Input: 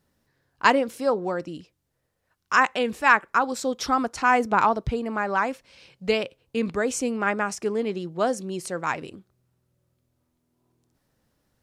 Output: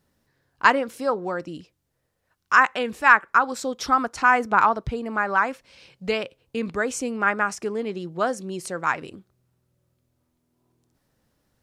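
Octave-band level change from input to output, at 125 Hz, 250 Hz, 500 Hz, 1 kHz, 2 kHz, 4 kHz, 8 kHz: -1.5 dB, -2.0 dB, -1.5 dB, +2.0 dB, +3.5 dB, -1.0 dB, -1.0 dB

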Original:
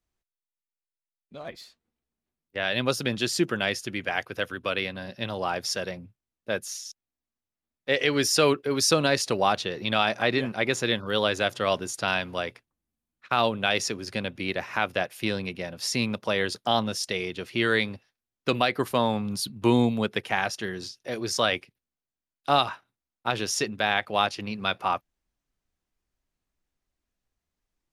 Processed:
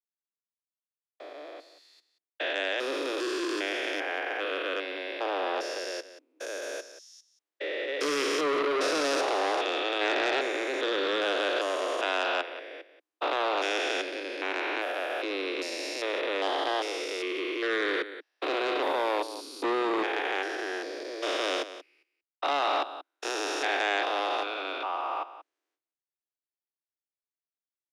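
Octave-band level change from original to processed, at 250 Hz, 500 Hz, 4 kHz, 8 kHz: -6.5 dB, -1.5 dB, -4.0 dB, -9.0 dB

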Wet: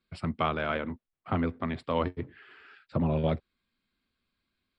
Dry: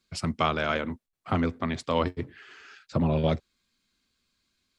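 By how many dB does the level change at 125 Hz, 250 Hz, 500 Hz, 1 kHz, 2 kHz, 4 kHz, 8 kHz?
-2.5 dB, -2.5 dB, -2.5 dB, -3.0 dB, -3.5 dB, -7.0 dB, under -15 dB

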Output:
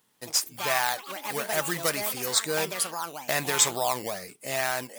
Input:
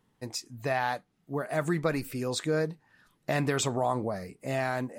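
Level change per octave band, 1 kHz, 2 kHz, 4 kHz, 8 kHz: +2.5 dB, +5.0 dB, +10.0 dB, +13.0 dB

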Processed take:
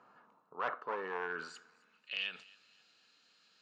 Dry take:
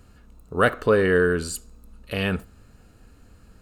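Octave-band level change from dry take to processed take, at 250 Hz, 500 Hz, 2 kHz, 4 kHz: -28.5 dB, -22.5 dB, -15.0 dB, -7.5 dB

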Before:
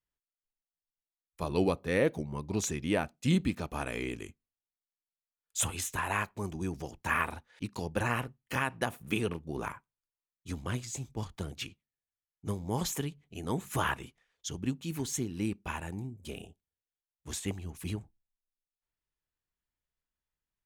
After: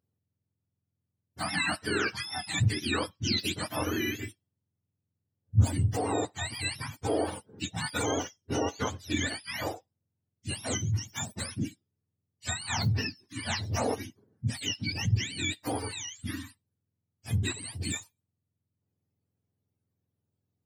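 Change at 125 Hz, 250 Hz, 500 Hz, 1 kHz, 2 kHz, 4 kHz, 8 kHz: +5.5 dB, 0.0 dB, 0.0 dB, +0.5 dB, +2.5 dB, +9.0 dB, +2.5 dB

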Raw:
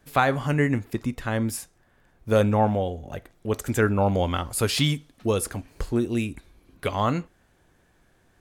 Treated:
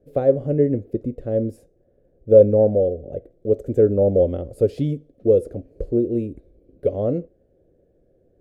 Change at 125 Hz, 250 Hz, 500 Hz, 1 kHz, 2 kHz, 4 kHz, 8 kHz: 0.0 dB, +2.0 dB, +9.5 dB, -12.0 dB, under -20 dB, under -20 dB, under -20 dB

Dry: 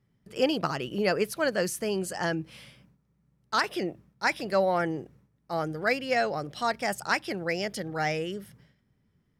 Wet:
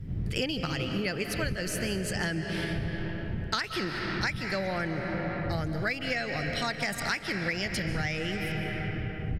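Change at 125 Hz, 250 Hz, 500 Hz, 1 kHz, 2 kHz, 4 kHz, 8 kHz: +7.0 dB, +0.5 dB, -6.0 dB, -6.0 dB, +0.5 dB, +2.0 dB, 0.0 dB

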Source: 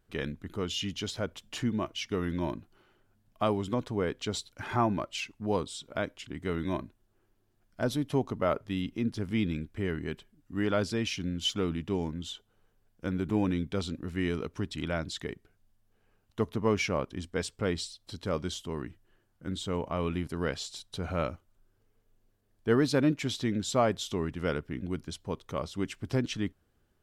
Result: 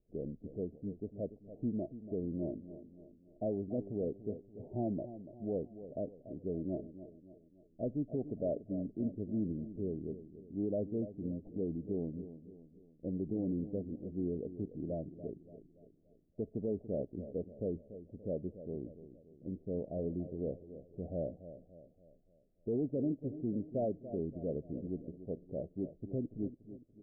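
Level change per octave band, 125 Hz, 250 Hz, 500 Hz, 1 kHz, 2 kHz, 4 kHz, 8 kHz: -8.0 dB, -5.5 dB, -6.0 dB, -18.5 dB, under -40 dB, under -40 dB, under -35 dB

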